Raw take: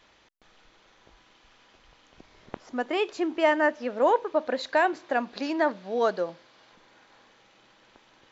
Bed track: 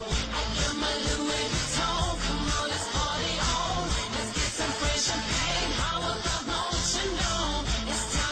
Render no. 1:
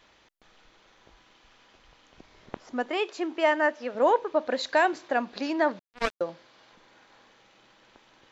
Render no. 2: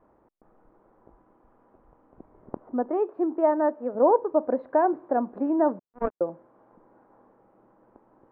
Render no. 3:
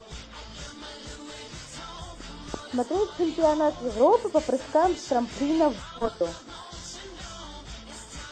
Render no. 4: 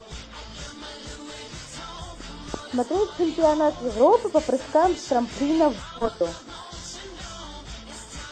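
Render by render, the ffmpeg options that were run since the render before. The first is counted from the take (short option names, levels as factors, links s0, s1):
-filter_complex "[0:a]asettb=1/sr,asplit=3[s0][s1][s2];[s0]atrim=end=2.904[s3];[s1]atrim=start=2.9:end=3.95,asetpts=PTS-STARTPTS,afade=t=in:d=0.004:c=qsin,afade=t=out:st=1.046:d=0.004:c=qsin,highpass=f=350:p=1[s4];[s2]atrim=start=3.946[s5];[s3][s4]acrossfade=d=0.004:c1=hsin:c2=qsin[s6];[s6][s5]acrossfade=d=0.004:c1=qsin:c2=hsin,asettb=1/sr,asplit=3[s7][s8][s9];[s7]atrim=end=4.514[s10];[s8]atrim=start=4.51:end=5.08,asetpts=PTS-STARTPTS,afade=t=in:d=0.004:c=qsin,afade=t=out:st=0.566:d=0.004:c=qsin,highshelf=f=4400:g=7[s11];[s9]atrim=start=5.076[s12];[s10][s11]acrossfade=d=0.004:c1=hsin:c2=qsin[s13];[s13][s12]acrossfade=d=0.004:c1=qsin:c2=hsin,asettb=1/sr,asplit=3[s14][s15][s16];[s14]atrim=end=5.794[s17];[s15]atrim=start=5.79:end=6.21,asetpts=PTS-STARTPTS,afade=t=in:d=0.004:c=qsin,afade=t=out:st=0.416:d=0.004:c=qsin,acrusher=bits=2:mix=0:aa=0.5[s18];[s16]atrim=start=6.206[s19];[s17][s18]acrossfade=d=0.004:c1=hsin:c2=qsin[s20];[s20][s19]acrossfade=d=0.004:c1=qsin:c2=hsin"
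-af "lowpass=f=1100:w=0.5412,lowpass=f=1100:w=1.3066,equalizer=f=300:w=0.74:g=5.5"
-filter_complex "[1:a]volume=0.237[s0];[0:a][s0]amix=inputs=2:normalize=0"
-af "volume=1.33"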